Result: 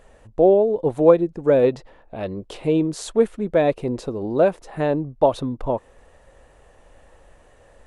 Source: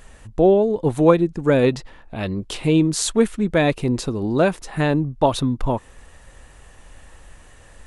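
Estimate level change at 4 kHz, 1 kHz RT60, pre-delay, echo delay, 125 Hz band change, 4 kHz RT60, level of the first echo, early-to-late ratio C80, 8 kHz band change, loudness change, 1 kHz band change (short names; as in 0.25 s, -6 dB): -9.5 dB, none, none, none, -7.0 dB, none, none, none, -11.5 dB, -1.0 dB, -1.5 dB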